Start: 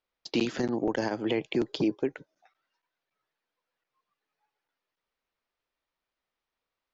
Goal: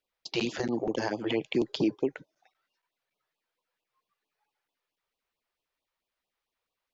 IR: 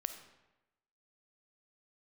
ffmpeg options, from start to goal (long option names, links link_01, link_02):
-af "lowshelf=frequency=130:gain=-4,afftfilt=real='re*(1-between(b*sr/1024,210*pow(1800/210,0.5+0.5*sin(2*PI*4.5*pts/sr))/1.41,210*pow(1800/210,0.5+0.5*sin(2*PI*4.5*pts/sr))*1.41))':imag='im*(1-between(b*sr/1024,210*pow(1800/210,0.5+0.5*sin(2*PI*4.5*pts/sr))/1.41,210*pow(1800/210,0.5+0.5*sin(2*PI*4.5*pts/sr))*1.41))':win_size=1024:overlap=0.75,volume=1dB"